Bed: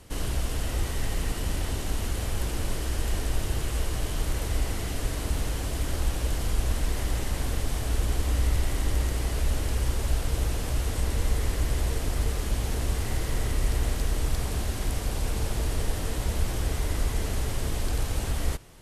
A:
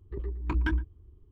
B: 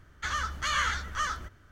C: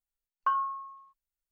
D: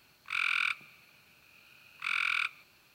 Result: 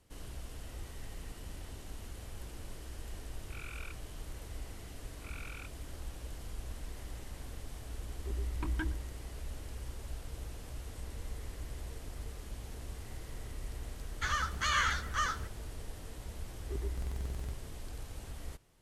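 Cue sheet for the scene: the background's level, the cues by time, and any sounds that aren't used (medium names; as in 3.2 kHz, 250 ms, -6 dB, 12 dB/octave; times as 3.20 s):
bed -16.5 dB
3.20 s: add D -16.5 dB + Bessel low-pass 2.5 kHz
8.13 s: add A -7 dB
13.99 s: add B -2 dB
16.58 s: add A -2.5 dB + buffer glitch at 0.35 s, samples 2048, times 12
not used: C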